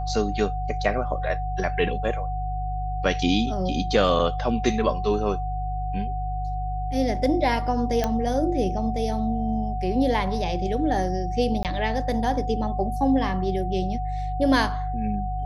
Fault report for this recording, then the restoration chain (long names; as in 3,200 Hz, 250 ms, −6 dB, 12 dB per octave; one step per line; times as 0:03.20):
mains hum 50 Hz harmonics 3 −29 dBFS
whistle 740 Hz −30 dBFS
0:08.04: click −10 dBFS
0:11.63–0:11.65: drop-out 18 ms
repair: click removal
notch filter 740 Hz, Q 30
hum removal 50 Hz, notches 3
repair the gap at 0:11.63, 18 ms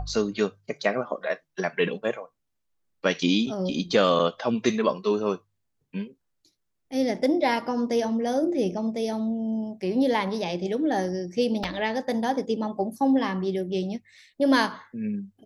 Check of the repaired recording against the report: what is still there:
none of them is left